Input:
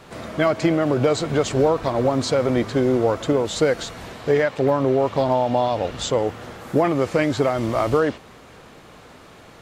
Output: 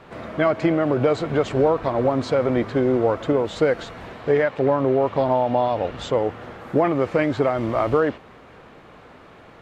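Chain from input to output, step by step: tone controls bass -2 dB, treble -15 dB

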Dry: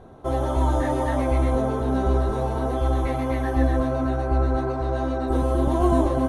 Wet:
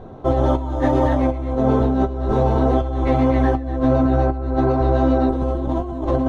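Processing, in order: bell 1700 Hz -4 dB 1.6 oct; negative-ratio compressor -24 dBFS, ratio -0.5; air absorption 130 m; on a send: reverb RT60 0.20 s, pre-delay 4 ms, DRR 15.5 dB; on the sum: gain +6.5 dB

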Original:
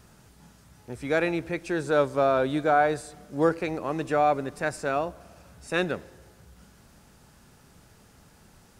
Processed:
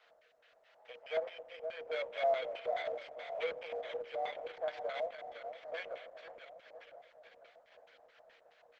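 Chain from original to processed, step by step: FFT order left unsorted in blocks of 16 samples; compressor 1.5:1, threshold -42 dBFS, peak gain reduction 9 dB; soft clip -30.5 dBFS, distortion -10 dB; rotary speaker horn 0.8 Hz, later 6.7 Hz, at 5.78; rippled Chebyshev high-pass 460 Hz, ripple 9 dB; on a send: feedback echo 0.506 s, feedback 60%, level -9.5 dB; on the sum: spring tank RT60 3.2 s, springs 40 ms, chirp 70 ms, DRR 13.5 dB; LFO low-pass square 4.7 Hz 750–2900 Hz; gain +3.5 dB; Opus 10 kbps 48000 Hz

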